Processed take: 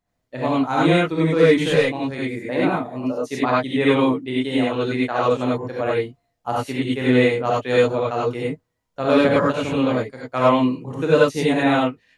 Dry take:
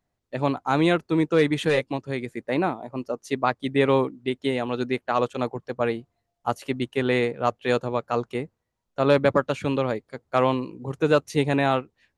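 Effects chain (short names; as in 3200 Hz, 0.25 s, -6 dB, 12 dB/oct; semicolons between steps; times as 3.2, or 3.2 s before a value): non-linear reverb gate 0.12 s rising, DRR -6.5 dB; gain -3 dB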